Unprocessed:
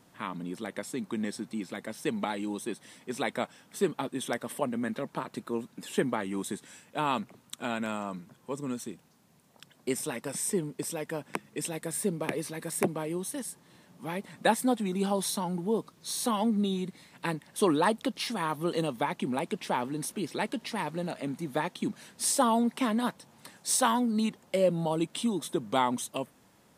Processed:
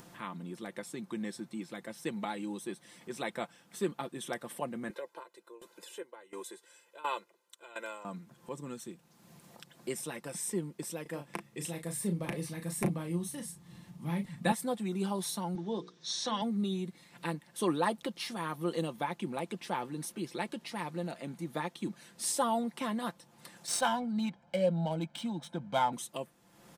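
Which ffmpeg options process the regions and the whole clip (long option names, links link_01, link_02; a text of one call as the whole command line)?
ffmpeg -i in.wav -filter_complex "[0:a]asettb=1/sr,asplit=3[link_01][link_02][link_03];[link_01]atrim=end=4.904[link_04];[link_02]atrim=start=4.9:end=8.05,asetpts=PTS-STARTPTS,afade=type=in:duration=0.004:curve=qsin,afade=type=out:start_time=3.146:duration=0.004:curve=qsin,highpass=frequency=300:width=0.5412,highpass=frequency=300:width=1.3066,aecho=1:1:2:0.85,atrim=end_sample=138915,aeval=exprs='val(0)*pow(10,-22*if(lt(mod(1.4*n/s,1),2*abs(1.4)/1000),1-mod(1.4*n/s,1)/(2*abs(1.4)/1000),(mod(1.4*n/s,1)-2*abs(1.4)/1000)/(1-2*abs(1.4)/1000))/20)':channel_layout=same[link_05];[link_03]atrim=start=8.046[link_06];[link_04][link_05]acrossfade=duration=0.004:curve1=hsin:curve2=qsin[link_07];[link_07][link_06]acrossfade=duration=0.004:curve1=qsin:curve2=hsin,asettb=1/sr,asplit=3[link_08][link_09][link_10];[link_08]atrim=end=11.024[link_11];[link_09]atrim=start=11.02:end=14.52,asetpts=PTS-STARTPTS,afade=type=in:duration=0.004:curve=qsin,afade=type=out:start_time=3.496:duration=0.004:curve=qsin,bandreject=frequency=1500:width=12,asubboost=boost=8.5:cutoff=160,asplit=2[link_12][link_13];[link_13]adelay=35,volume=-7.5dB[link_14];[link_12][link_14]amix=inputs=2:normalize=0,atrim=end_sample=154350[link_15];[link_10]atrim=start=14.516[link_16];[link_11][link_15]acrossfade=duration=0.004:curve1=hsin:curve2=qsin[link_17];[link_17][link_16]acrossfade=duration=0.004:curve1=qsin:curve2=hsin,asettb=1/sr,asplit=3[link_18][link_19][link_20];[link_18]atrim=end=15.554[link_21];[link_19]atrim=start=15.55:end=16.42,asetpts=PTS-STARTPTS,afade=type=in:duration=0.004:curve=qsin,afade=type=out:start_time=0.866:duration=0.004:curve=qsin,highpass=130,equalizer=frequency=1700:width_type=q:width=4:gain=6,equalizer=frequency=3600:width_type=q:width=4:gain=10,equalizer=frequency=5700:width_type=q:width=4:gain=9,lowpass=frequency=6800:width=0.5412,lowpass=frequency=6800:width=1.3066,bandreject=frequency=60:width_type=h:width=6,bandreject=frequency=120:width_type=h:width=6,bandreject=frequency=180:width_type=h:width=6,bandreject=frequency=240:width_type=h:width=6,bandreject=frequency=300:width_type=h:width=6,bandreject=frequency=360:width_type=h:width=6,bandreject=frequency=420:width_type=h:width=6,bandreject=frequency=480:width_type=h:width=6[link_22];[link_20]atrim=start=16.416[link_23];[link_21][link_22]acrossfade=duration=0.004:curve1=hsin:curve2=qsin[link_24];[link_24][link_23]acrossfade=duration=0.004:curve1=qsin:curve2=hsin,asettb=1/sr,asplit=3[link_25][link_26][link_27];[link_25]atrim=end=23.674[link_28];[link_26]atrim=start=23.67:end=25.93,asetpts=PTS-STARTPTS,afade=type=in:duration=0.004:curve=qsin,afade=type=out:start_time=2.256:duration=0.004:curve=qsin,aecho=1:1:1.3:0.73,atrim=end_sample=99666,adynamicsmooth=sensitivity=7.5:basefreq=3000[link_29];[link_27]atrim=start=25.926[link_30];[link_28][link_29]acrossfade=duration=0.004:curve1=hsin:curve2=qsin[link_31];[link_31][link_30]acrossfade=duration=0.004:curve1=qsin:curve2=hsin,aecho=1:1:5.8:0.46,acompressor=mode=upward:threshold=-38dB:ratio=2.5,volume=-6dB" out.wav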